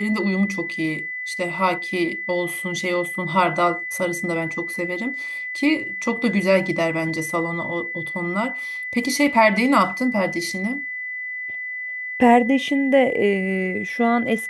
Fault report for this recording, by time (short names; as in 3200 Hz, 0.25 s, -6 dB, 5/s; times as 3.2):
tone 2000 Hz -27 dBFS